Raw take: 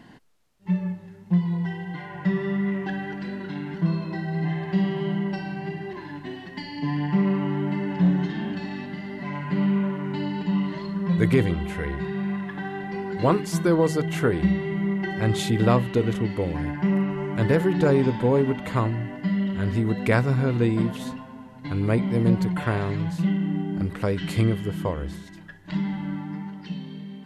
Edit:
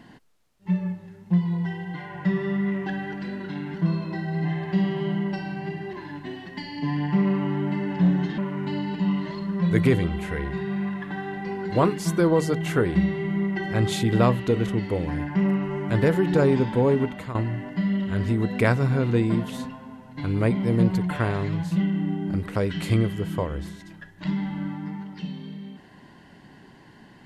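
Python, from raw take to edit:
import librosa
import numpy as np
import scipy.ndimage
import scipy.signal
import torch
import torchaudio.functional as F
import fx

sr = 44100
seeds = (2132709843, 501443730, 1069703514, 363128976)

y = fx.edit(x, sr, fx.cut(start_s=8.38, length_s=1.47),
    fx.fade_out_to(start_s=18.52, length_s=0.3, floor_db=-14.5), tone=tone)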